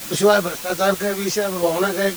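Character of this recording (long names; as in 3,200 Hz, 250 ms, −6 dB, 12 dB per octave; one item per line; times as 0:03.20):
sample-and-hold tremolo 4.3 Hz, depth 65%
a quantiser's noise floor 6 bits, dither triangular
a shimmering, thickened sound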